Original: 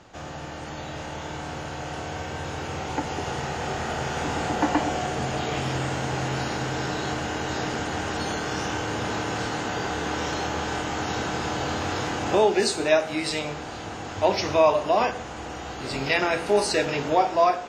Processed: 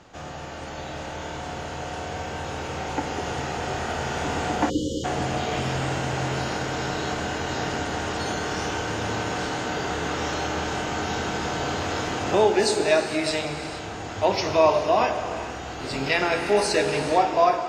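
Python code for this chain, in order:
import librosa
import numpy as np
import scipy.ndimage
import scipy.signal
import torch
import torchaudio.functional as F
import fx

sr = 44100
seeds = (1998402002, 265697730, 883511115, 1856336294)

y = fx.rev_gated(x, sr, seeds[0], gate_ms=500, shape='flat', drr_db=6.5)
y = fx.spec_erase(y, sr, start_s=4.7, length_s=0.34, low_hz=570.0, high_hz=2900.0)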